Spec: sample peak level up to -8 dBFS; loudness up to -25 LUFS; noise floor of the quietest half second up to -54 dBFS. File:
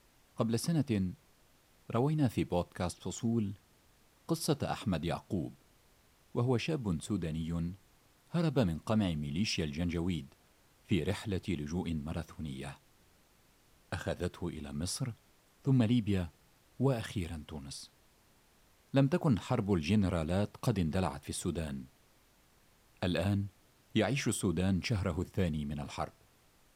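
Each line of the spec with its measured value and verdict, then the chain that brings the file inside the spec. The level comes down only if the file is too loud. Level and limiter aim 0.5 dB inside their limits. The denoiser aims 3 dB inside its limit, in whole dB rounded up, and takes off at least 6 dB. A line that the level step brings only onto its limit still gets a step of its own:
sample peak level -17.0 dBFS: pass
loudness -34.5 LUFS: pass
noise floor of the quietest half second -66 dBFS: pass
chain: none needed

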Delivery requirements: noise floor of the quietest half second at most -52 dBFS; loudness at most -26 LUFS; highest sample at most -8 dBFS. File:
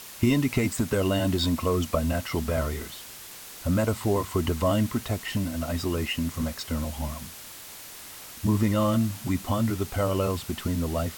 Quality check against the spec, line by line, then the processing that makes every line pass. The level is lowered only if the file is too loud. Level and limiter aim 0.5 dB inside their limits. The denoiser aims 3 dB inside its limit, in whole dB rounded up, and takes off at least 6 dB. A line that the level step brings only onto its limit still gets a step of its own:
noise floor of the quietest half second -43 dBFS: fail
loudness -27.0 LUFS: pass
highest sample -9.0 dBFS: pass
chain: noise reduction 12 dB, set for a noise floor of -43 dBFS

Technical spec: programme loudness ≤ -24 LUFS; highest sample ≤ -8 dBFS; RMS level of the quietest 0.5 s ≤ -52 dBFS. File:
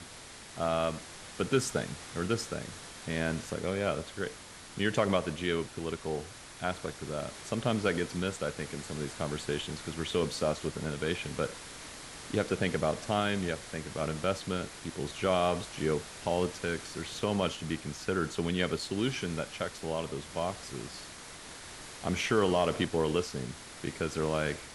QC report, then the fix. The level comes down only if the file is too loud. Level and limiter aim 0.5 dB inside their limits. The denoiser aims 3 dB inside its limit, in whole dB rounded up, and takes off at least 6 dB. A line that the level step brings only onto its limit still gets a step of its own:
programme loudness -33.0 LUFS: pass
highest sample -13.0 dBFS: pass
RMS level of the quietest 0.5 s -48 dBFS: fail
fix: noise reduction 7 dB, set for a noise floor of -48 dBFS

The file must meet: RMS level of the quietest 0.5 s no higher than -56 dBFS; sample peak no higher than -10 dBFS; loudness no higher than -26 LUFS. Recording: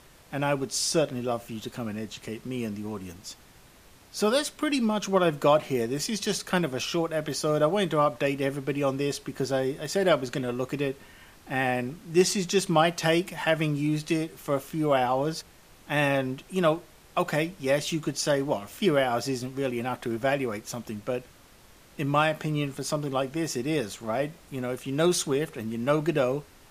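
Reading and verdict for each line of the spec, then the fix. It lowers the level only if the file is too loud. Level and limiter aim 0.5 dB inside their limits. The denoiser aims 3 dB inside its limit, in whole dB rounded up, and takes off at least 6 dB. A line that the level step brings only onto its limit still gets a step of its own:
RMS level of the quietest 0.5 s -54 dBFS: fail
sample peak -9.0 dBFS: fail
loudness -27.5 LUFS: pass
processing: noise reduction 6 dB, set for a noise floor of -54 dBFS; peak limiter -10.5 dBFS

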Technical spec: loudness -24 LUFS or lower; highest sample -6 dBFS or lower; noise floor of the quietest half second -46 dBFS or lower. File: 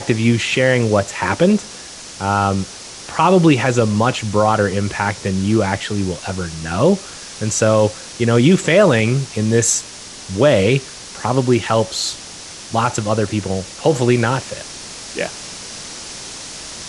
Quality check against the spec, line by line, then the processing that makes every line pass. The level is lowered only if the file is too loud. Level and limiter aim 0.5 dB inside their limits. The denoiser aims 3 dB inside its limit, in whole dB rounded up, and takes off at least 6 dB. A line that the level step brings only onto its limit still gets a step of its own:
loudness -17.0 LUFS: fail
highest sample -2.0 dBFS: fail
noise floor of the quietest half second -35 dBFS: fail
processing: noise reduction 7 dB, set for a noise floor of -35 dBFS; trim -7.5 dB

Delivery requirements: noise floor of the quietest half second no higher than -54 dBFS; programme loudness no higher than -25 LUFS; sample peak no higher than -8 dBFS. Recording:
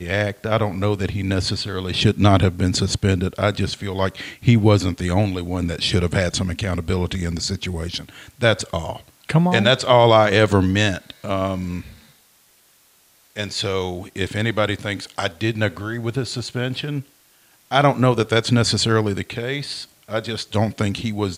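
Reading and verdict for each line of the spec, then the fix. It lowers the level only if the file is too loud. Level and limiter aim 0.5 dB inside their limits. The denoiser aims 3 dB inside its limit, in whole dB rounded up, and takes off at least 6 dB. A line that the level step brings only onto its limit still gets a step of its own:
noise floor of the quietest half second -56 dBFS: pass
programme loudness -20.5 LUFS: fail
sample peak -2.0 dBFS: fail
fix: trim -5 dB; peak limiter -8.5 dBFS

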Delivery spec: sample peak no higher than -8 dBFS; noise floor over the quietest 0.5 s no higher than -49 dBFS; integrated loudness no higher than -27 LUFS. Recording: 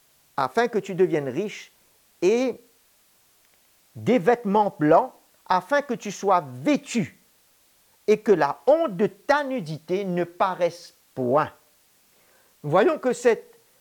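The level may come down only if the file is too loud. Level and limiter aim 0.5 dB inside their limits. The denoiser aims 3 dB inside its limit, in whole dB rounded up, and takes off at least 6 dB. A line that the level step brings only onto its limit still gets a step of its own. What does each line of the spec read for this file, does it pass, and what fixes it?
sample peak -6.0 dBFS: fail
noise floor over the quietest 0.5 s -61 dBFS: pass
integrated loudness -23.5 LUFS: fail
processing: trim -4 dB

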